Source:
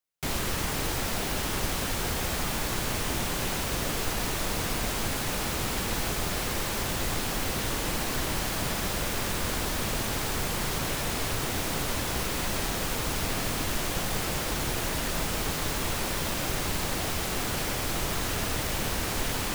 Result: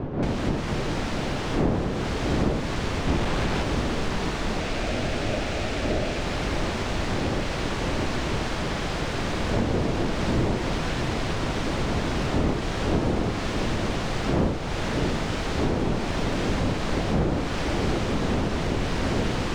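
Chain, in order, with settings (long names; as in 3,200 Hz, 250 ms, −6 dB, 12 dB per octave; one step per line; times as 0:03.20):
0:03.07–0:03.63: each half-wave held at its own peak
wind on the microphone 370 Hz −24 dBFS
0:04.60–0:06.21: thirty-one-band graphic EQ 160 Hz −11 dB, 630 Hz +7 dB, 1,000 Hz −12 dB, 2,500 Hz +3 dB, 12,500 Hz −10 dB
downward compressor 6 to 1, threshold −23 dBFS, peak gain reduction 15.5 dB
high-frequency loss of the air 120 metres
delay that swaps between a low-pass and a high-pass 685 ms, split 920 Hz, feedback 85%, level −6 dB
level +2 dB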